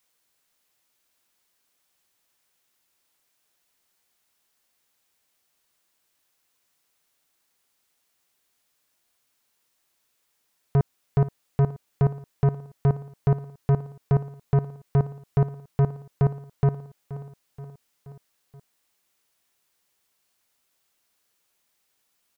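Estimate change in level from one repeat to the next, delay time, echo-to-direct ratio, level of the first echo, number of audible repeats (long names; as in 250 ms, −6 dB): −4.5 dB, 477 ms, −13.5 dB, −15.5 dB, 4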